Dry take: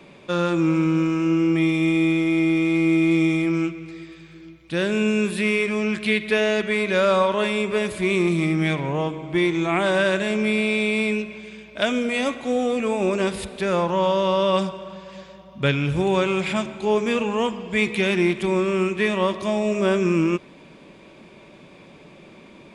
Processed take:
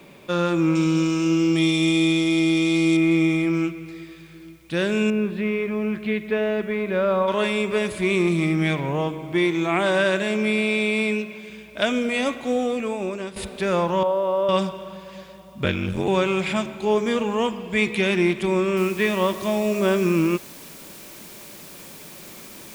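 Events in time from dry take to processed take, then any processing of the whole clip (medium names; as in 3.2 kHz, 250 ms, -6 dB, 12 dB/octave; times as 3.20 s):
0.75–2.97 s: resonant high shelf 2.8 kHz +10 dB, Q 1.5
5.10–7.28 s: tape spacing loss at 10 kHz 36 dB
9.32–11.50 s: high-pass 140 Hz
12.51–13.36 s: fade out, to -12.5 dB
14.03–14.49 s: band-pass filter 630 Hz, Q 1.2
15.64–16.08 s: ring modulator 45 Hz
16.93–17.39 s: band-stop 2.6 kHz, Q 8.7
18.77 s: noise floor step -63 dB -43 dB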